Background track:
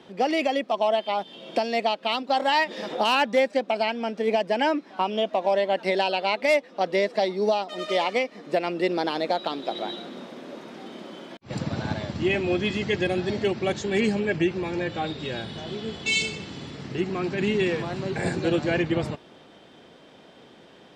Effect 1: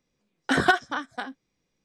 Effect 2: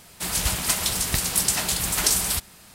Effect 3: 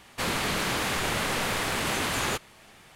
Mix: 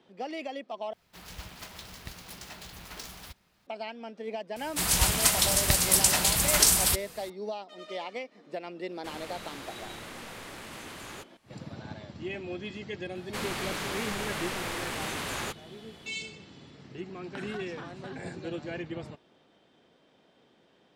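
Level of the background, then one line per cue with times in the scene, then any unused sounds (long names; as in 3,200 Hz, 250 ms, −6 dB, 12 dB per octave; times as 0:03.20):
background track −13 dB
0:00.93: overwrite with 2 −16.5 dB + running median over 5 samples
0:04.56: mix in 2
0:08.86: mix in 3 −15.5 dB, fades 0.10 s
0:13.15: mix in 3 −6.5 dB
0:16.86: mix in 1 −4.5 dB + downward compressor 10 to 1, threshold −35 dBFS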